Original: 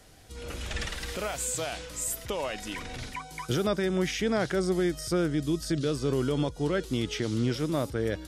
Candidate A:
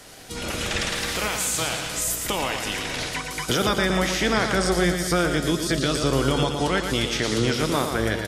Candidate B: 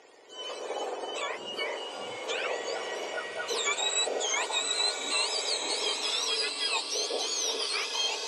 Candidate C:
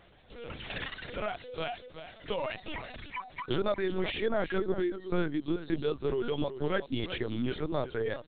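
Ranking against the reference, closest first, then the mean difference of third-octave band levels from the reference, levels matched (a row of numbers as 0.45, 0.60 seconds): A, C, B; 7.0, 9.5, 12.5 decibels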